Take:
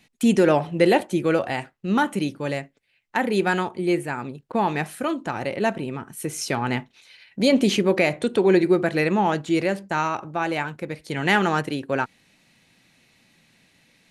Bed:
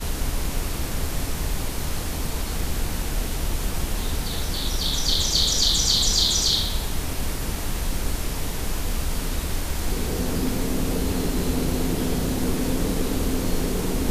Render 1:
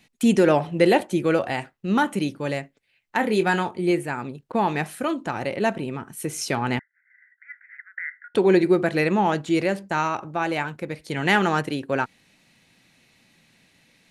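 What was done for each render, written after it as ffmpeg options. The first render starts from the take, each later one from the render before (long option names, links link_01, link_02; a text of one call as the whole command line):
ffmpeg -i in.wav -filter_complex "[0:a]asettb=1/sr,asplit=3[link_01][link_02][link_03];[link_01]atrim=end=3.174[link_04];[link_02]atrim=start=3.17:end=3.91,asetpts=PTS-STARTPTS,afade=type=in:duration=0.004:curve=qsin,afade=type=out:start_time=0.736:duration=0.004:curve=qsin,asplit=2[link_05][link_06];[link_06]adelay=23,volume=-10dB[link_07];[link_05][link_07]amix=inputs=2:normalize=0,atrim=end_sample=32634[link_08];[link_03]atrim=start=3.906[link_09];[link_04][link_08]acrossfade=duration=0.004:curve1=hsin:curve2=qsin[link_10];[link_10][link_09]acrossfade=duration=0.004:curve1=qsin:curve2=hsin,asettb=1/sr,asplit=3[link_11][link_12][link_13];[link_11]atrim=end=6.794[link_14];[link_12]atrim=start=6.79:end=8.35,asetpts=PTS-STARTPTS,afade=type=in:duration=0.004:curve=qsin,afade=type=out:start_time=1.556:duration=0.004:curve=qsin,asuperpass=centerf=1700:order=12:qfactor=2.6[link_15];[link_13]atrim=start=8.346[link_16];[link_14][link_15]acrossfade=duration=0.004:curve1=hsin:curve2=qsin[link_17];[link_17][link_16]acrossfade=duration=0.004:curve1=qsin:curve2=hsin" out.wav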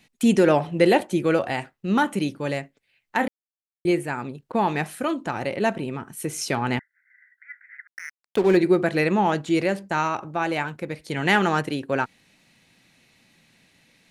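ffmpeg -i in.wav -filter_complex "[0:a]asettb=1/sr,asplit=3[link_01][link_02][link_03];[link_01]atrim=end=7.874[link_04];[link_02]atrim=start=7.87:end=8.57,asetpts=PTS-STARTPTS,afade=type=in:duration=0.004:curve=qsin,afade=type=out:start_time=0.696:duration=0.004:curve=qsin,aeval=exprs='sgn(val(0))*max(abs(val(0))-0.0211,0)':channel_layout=same[link_05];[link_03]atrim=start=8.566[link_06];[link_04][link_05]acrossfade=duration=0.004:curve1=hsin:curve2=qsin[link_07];[link_07][link_06]acrossfade=duration=0.004:curve1=qsin:curve2=hsin,asplit=3[link_08][link_09][link_10];[link_08]atrim=end=3.28,asetpts=PTS-STARTPTS,afade=type=out:start_time=3.276:duration=0.004:curve=hsin[link_11];[link_09]atrim=start=3.28:end=3.85,asetpts=PTS-STARTPTS,volume=0[link_12];[link_10]atrim=start=3.85,asetpts=PTS-STARTPTS,afade=type=in:duration=0.004:curve=hsin[link_13];[link_11][link_12][link_13]concat=n=3:v=0:a=1" out.wav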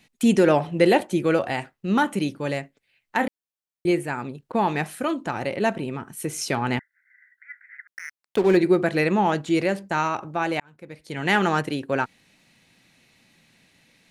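ffmpeg -i in.wav -filter_complex "[0:a]asplit=2[link_01][link_02];[link_01]atrim=end=10.6,asetpts=PTS-STARTPTS,afade=type=out:start_time=10.596:duration=0.004:curve=hsin[link_03];[link_02]atrim=start=10.6,asetpts=PTS-STARTPTS,afade=type=in:duration=0.85[link_04];[link_03][link_04]concat=n=2:v=0:a=1" out.wav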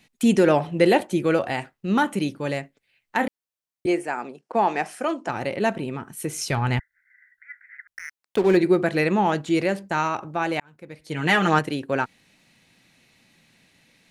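ffmpeg -i in.wav -filter_complex "[0:a]asettb=1/sr,asplit=3[link_01][link_02][link_03];[link_01]atrim=end=3.864[link_04];[link_02]atrim=start=3.86:end=5.29,asetpts=PTS-STARTPTS,afade=type=in:duration=0.004:curve=qsin,afade=type=out:start_time=1.426:duration=0.004:curve=qsin,highpass=frequency=220:width=0.5412,highpass=frequency=220:width=1.3066,equalizer=frequency=270:width_type=q:width=4:gain=-5,equalizer=frequency=730:width_type=q:width=4:gain=6,equalizer=frequency=3800:width_type=q:width=4:gain=-7,equalizer=frequency=5400:width_type=q:width=4:gain=6,lowpass=frequency=9900:width=0.5412,lowpass=frequency=9900:width=1.3066[link_05];[link_03]atrim=start=5.286[link_06];[link_04][link_05]acrossfade=duration=0.004:curve1=hsin:curve2=qsin[link_07];[link_07][link_06]acrossfade=duration=0.004:curve1=qsin:curve2=hsin,asplit=3[link_08][link_09][link_10];[link_08]afade=type=out:start_time=6.43:duration=0.02[link_11];[link_09]asubboost=boost=7.5:cutoff=96,afade=type=in:start_time=6.43:duration=0.02,afade=type=out:start_time=8.07:duration=0.02[link_12];[link_10]afade=type=in:start_time=8.07:duration=0.02[link_13];[link_11][link_12][link_13]amix=inputs=3:normalize=0,asettb=1/sr,asplit=3[link_14][link_15][link_16];[link_14]atrim=end=11.014[link_17];[link_15]atrim=start=11.01:end=11.59,asetpts=PTS-STARTPTS,afade=type=in:duration=0.004:curve=qsin,afade=type=out:start_time=0.576:duration=0.004:curve=qsin,aecho=1:1:6.5:0.65,atrim=end_sample=25578[link_18];[link_16]atrim=start=11.586[link_19];[link_17][link_18]acrossfade=duration=0.004:curve1=hsin:curve2=qsin[link_20];[link_20][link_19]acrossfade=duration=0.004:curve1=qsin:curve2=hsin" out.wav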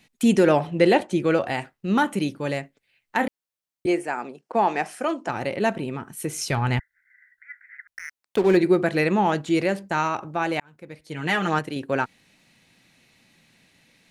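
ffmpeg -i in.wav -filter_complex "[0:a]asettb=1/sr,asplit=3[link_01][link_02][link_03];[link_01]atrim=end=0.704[link_04];[link_02]atrim=start=0.7:end=1.47,asetpts=PTS-STARTPTS,afade=type=in:duration=0.004:curve=qsin,afade=type=out:start_time=0.766:duration=0.004:curve=qsin,lowpass=8200[link_05];[link_03]atrim=start=1.466[link_06];[link_04][link_05]acrossfade=duration=0.004:curve1=hsin:curve2=qsin[link_07];[link_07][link_06]acrossfade=duration=0.004:curve1=qsin:curve2=hsin,asplit=3[link_08][link_09][link_10];[link_08]atrim=end=11.012[link_11];[link_09]atrim=start=11.008:end=11.762,asetpts=PTS-STARTPTS,volume=-4dB[link_12];[link_10]atrim=start=11.758[link_13];[link_11][link_12]acrossfade=duration=0.004:curve1=hsin:curve2=hsin[link_14];[link_14][link_13]acrossfade=duration=0.004:curve1=hsin:curve2=hsin" out.wav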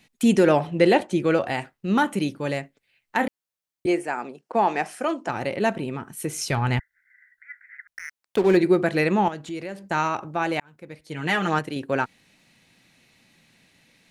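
ffmpeg -i in.wav -filter_complex "[0:a]asettb=1/sr,asplit=3[link_01][link_02][link_03];[link_01]atrim=end=9.284[link_04];[link_02]atrim=start=9.28:end=9.9,asetpts=PTS-STARTPTS,afade=type=in:duration=0.004:curve=qsin,afade=type=out:start_time=0.616:duration=0.004:curve=qsin,acompressor=threshold=-38dB:ratio=2:attack=3.2:release=140:knee=1:detection=peak[link_05];[link_03]atrim=start=9.896[link_06];[link_04][link_05]acrossfade=duration=0.004:curve1=hsin:curve2=qsin[link_07];[link_07][link_06]acrossfade=duration=0.004:curve1=qsin:curve2=hsin" out.wav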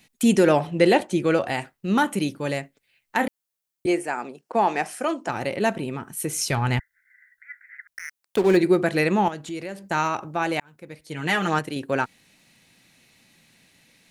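ffmpeg -i in.wav -af "highshelf=frequency=6700:gain=7.5" out.wav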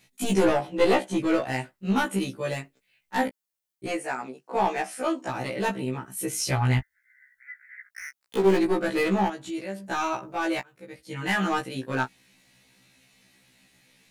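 ffmpeg -i in.wav -af "aeval=exprs='clip(val(0),-1,0.133)':channel_layout=same,afftfilt=real='re*1.73*eq(mod(b,3),0)':imag='im*1.73*eq(mod(b,3),0)':win_size=2048:overlap=0.75" out.wav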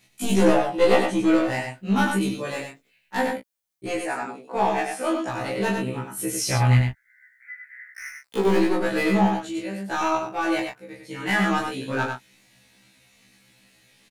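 ffmpeg -i in.wav -filter_complex "[0:a]asplit=2[link_01][link_02];[link_02]adelay=25,volume=-3.5dB[link_03];[link_01][link_03]amix=inputs=2:normalize=0,aecho=1:1:97:0.562" out.wav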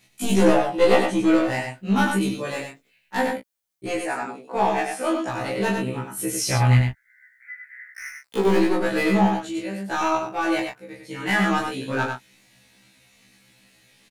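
ffmpeg -i in.wav -af "volume=1dB" out.wav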